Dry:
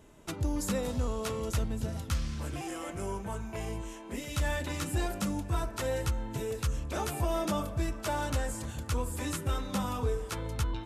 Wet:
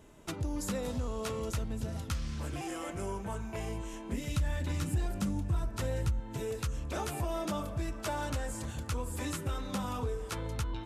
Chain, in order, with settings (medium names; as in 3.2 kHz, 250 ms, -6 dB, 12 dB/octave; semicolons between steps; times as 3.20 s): 3.93–6.20 s: tone controls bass +10 dB, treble +1 dB; compression 2.5:1, threshold -32 dBFS, peak gain reduction 10.5 dB; loudspeaker Doppler distortion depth 0.13 ms